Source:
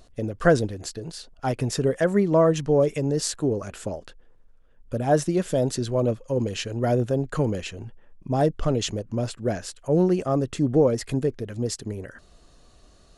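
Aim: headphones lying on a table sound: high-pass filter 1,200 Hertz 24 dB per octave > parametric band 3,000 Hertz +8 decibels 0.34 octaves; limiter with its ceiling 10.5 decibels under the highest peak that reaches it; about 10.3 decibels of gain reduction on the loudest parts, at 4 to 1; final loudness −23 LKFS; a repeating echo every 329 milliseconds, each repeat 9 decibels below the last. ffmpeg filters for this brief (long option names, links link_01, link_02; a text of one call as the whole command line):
ffmpeg -i in.wav -af "acompressor=threshold=-26dB:ratio=4,alimiter=limit=-23dB:level=0:latency=1,highpass=frequency=1200:width=0.5412,highpass=frequency=1200:width=1.3066,equalizer=frequency=3000:width_type=o:width=0.34:gain=8,aecho=1:1:329|658|987|1316:0.355|0.124|0.0435|0.0152,volume=16.5dB" out.wav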